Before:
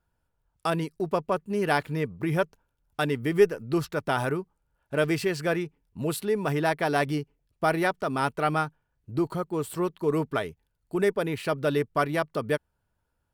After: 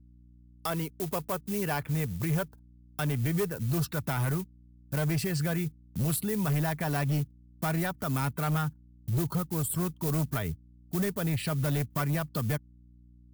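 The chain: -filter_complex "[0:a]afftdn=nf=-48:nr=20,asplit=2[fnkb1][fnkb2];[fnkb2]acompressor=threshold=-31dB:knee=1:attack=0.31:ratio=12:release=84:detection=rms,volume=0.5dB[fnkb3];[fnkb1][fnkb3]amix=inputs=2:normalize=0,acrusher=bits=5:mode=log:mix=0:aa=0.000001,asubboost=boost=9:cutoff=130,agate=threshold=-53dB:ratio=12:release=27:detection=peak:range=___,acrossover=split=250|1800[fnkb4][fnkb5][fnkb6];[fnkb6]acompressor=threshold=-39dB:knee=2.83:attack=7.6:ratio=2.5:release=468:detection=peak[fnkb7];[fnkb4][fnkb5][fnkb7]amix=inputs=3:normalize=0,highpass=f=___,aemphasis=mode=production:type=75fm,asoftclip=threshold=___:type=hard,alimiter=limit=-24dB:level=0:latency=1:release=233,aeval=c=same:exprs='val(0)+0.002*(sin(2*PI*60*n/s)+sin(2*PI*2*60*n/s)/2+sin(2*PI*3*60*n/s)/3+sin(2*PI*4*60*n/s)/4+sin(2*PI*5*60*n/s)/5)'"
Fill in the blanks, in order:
-24dB, 88, -18dB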